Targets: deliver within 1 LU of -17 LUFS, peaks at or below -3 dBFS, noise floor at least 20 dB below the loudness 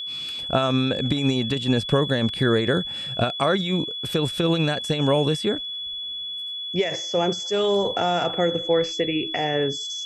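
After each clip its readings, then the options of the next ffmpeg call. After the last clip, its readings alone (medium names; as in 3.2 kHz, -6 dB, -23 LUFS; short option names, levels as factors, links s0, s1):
steady tone 3.4 kHz; tone level -29 dBFS; loudness -23.0 LUFS; peak level -6.0 dBFS; loudness target -17.0 LUFS
-> -af "bandreject=f=3400:w=30"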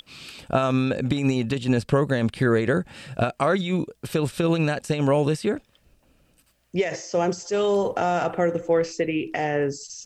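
steady tone not found; loudness -24.0 LUFS; peak level -6.0 dBFS; loudness target -17.0 LUFS
-> -af "volume=2.24,alimiter=limit=0.708:level=0:latency=1"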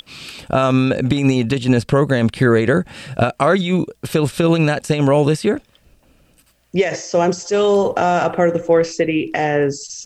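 loudness -17.0 LUFS; peak level -3.0 dBFS; noise floor -57 dBFS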